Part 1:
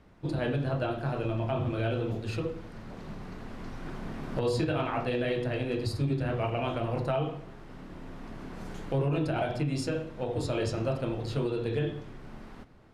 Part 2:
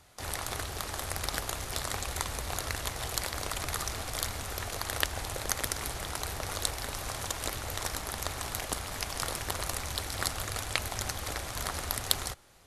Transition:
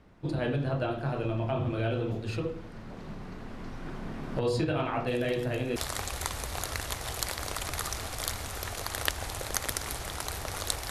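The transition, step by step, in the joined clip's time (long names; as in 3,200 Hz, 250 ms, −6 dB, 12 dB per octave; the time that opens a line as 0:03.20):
part 1
0:05.07: mix in part 2 from 0:01.02 0.69 s −18 dB
0:05.76: continue with part 2 from 0:01.71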